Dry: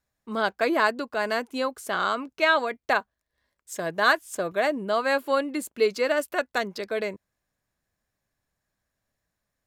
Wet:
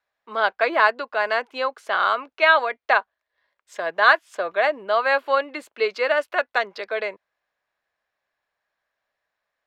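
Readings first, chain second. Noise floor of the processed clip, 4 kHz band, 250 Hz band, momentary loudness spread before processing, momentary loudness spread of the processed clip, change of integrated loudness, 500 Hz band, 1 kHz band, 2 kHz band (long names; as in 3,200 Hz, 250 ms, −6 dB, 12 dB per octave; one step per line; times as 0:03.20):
−84 dBFS, +2.5 dB, −8.5 dB, 8 LU, 11 LU, +4.0 dB, +2.5 dB, +5.5 dB, +5.5 dB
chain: three-way crossover with the lows and the highs turned down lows −23 dB, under 480 Hz, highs −24 dB, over 4,200 Hz
level +6 dB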